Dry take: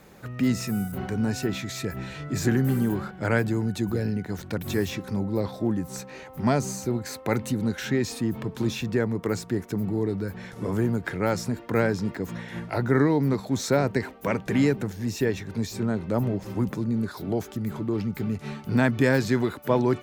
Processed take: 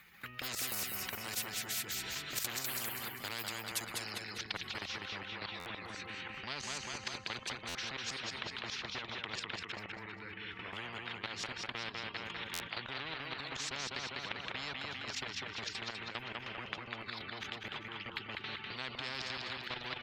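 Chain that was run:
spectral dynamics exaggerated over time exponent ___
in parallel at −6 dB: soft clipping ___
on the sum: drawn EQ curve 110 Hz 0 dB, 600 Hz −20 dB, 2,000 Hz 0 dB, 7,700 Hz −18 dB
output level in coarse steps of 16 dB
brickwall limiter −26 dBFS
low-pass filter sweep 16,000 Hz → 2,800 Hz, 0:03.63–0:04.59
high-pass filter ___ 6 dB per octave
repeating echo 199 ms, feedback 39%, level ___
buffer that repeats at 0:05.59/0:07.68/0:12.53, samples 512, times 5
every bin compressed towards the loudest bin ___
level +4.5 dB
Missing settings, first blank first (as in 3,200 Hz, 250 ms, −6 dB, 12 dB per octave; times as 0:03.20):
1.5, −28.5 dBFS, 1,100 Hz, −8.5 dB, 10 to 1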